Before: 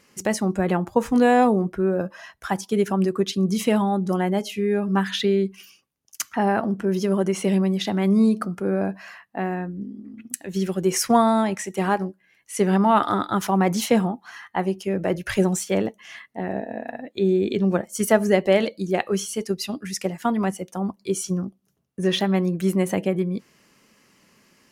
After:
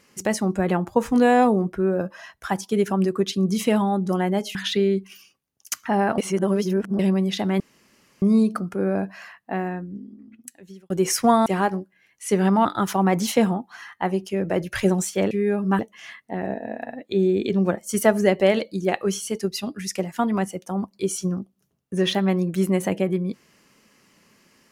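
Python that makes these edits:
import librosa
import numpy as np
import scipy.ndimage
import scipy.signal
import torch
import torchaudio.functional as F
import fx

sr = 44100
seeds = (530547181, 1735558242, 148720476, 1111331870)

y = fx.edit(x, sr, fx.move(start_s=4.55, length_s=0.48, to_s=15.85),
    fx.reverse_span(start_s=6.66, length_s=0.81),
    fx.insert_room_tone(at_s=8.08, length_s=0.62),
    fx.fade_out_span(start_s=9.42, length_s=1.34),
    fx.cut(start_s=11.32, length_s=0.42),
    fx.cut(start_s=12.93, length_s=0.26), tone=tone)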